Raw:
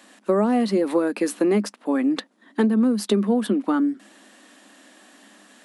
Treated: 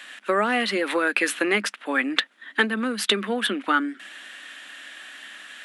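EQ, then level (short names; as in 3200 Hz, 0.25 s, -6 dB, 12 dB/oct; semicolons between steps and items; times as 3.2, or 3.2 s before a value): HPF 900 Hz 6 dB/oct; band shelf 2200 Hz +11.5 dB; +3.0 dB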